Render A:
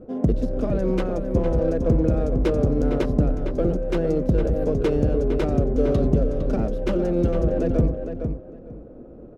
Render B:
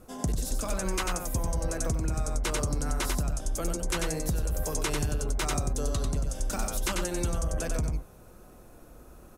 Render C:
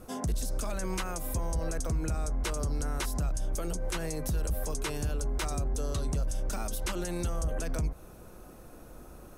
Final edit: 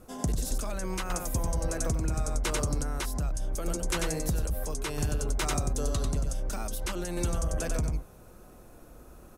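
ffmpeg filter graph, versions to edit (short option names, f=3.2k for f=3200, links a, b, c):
-filter_complex "[2:a]asplit=4[a][b][c][d];[1:a]asplit=5[e][f][g][h][i];[e]atrim=end=0.582[j];[a]atrim=start=0.578:end=1.102[k];[f]atrim=start=1.098:end=2.832[l];[b]atrim=start=2.828:end=3.662[m];[g]atrim=start=3.658:end=4.452[n];[c]atrim=start=4.448:end=4.982[o];[h]atrim=start=4.978:end=6.332[p];[d]atrim=start=6.328:end=7.172[q];[i]atrim=start=7.168[r];[j][k]acrossfade=d=0.004:c1=hsin:c2=hsin[s];[s][l]acrossfade=d=0.004:c1=hsin:c2=hsin[t];[t][m]acrossfade=d=0.004:c1=hsin:c2=hsin[u];[u][n]acrossfade=d=0.004:c1=hsin:c2=hsin[v];[v][o]acrossfade=d=0.004:c1=hsin:c2=hsin[w];[w][p]acrossfade=d=0.004:c1=hsin:c2=hsin[x];[x][q]acrossfade=d=0.004:c1=hsin:c2=hsin[y];[y][r]acrossfade=d=0.004:c1=hsin:c2=hsin"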